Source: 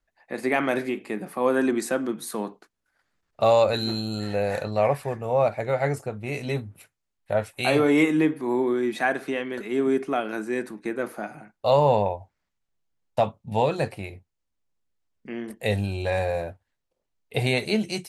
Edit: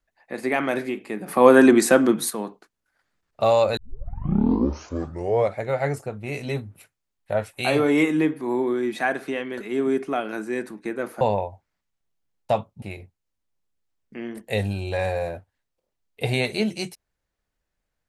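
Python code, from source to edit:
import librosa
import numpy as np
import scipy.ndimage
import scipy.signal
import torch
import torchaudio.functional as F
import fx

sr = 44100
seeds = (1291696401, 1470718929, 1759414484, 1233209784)

y = fx.edit(x, sr, fx.clip_gain(start_s=1.28, length_s=1.02, db=9.5),
    fx.tape_start(start_s=3.77, length_s=1.86),
    fx.cut(start_s=11.21, length_s=0.68),
    fx.cut(start_s=13.5, length_s=0.45), tone=tone)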